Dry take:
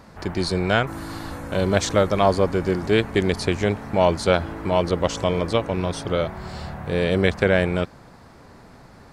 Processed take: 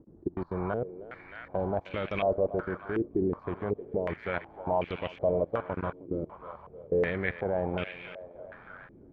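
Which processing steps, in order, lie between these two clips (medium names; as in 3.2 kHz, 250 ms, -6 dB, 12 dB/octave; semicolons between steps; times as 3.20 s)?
level held to a coarse grid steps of 24 dB; thinning echo 311 ms, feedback 81%, high-pass 570 Hz, level -11 dB; step-sequenced low-pass 2.7 Hz 340–2600 Hz; trim -8.5 dB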